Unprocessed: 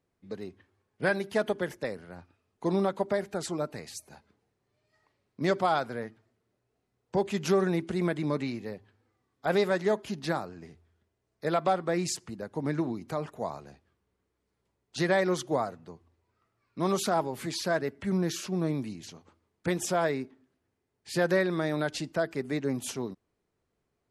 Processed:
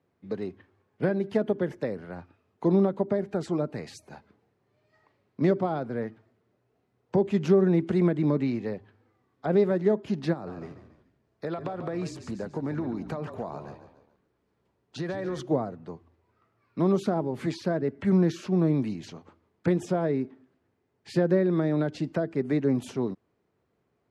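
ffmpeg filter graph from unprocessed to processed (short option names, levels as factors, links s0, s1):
-filter_complex "[0:a]asettb=1/sr,asplit=3[s0][s1][s2];[s0]atrim=end=10.334[s3];[s1]atrim=start=10.33:end=15.4,asetpts=PTS-STARTPTS,afade=t=in:d=0.004:c=qsin,afade=t=out:st=5.066:d=0.004:c=qsin,bandreject=f=2100:w=20,acompressor=threshold=0.02:ratio=5:attack=3.2:release=140:knee=1:detection=peak,asplit=5[s4][s5][s6][s7][s8];[s5]adelay=142,afreqshift=-47,volume=0.282[s9];[s6]adelay=284,afreqshift=-94,volume=0.122[s10];[s7]adelay=426,afreqshift=-141,volume=0.0519[s11];[s8]adelay=568,afreqshift=-188,volume=0.0224[s12];[s4][s9][s10][s11][s12]amix=inputs=5:normalize=0,atrim=end_sample=223587[s13];[s2]atrim=start=15.396[s14];[s3][s13]acrossfade=d=0.004:c1=hsin:c2=qsin[s15];[s15][s14]acrossfade=d=0.004:c1=qsin:c2=hsin,acrossover=split=470[s16][s17];[s17]acompressor=threshold=0.00891:ratio=6[s18];[s16][s18]amix=inputs=2:normalize=0,highpass=86,aemphasis=mode=reproduction:type=75fm,volume=2"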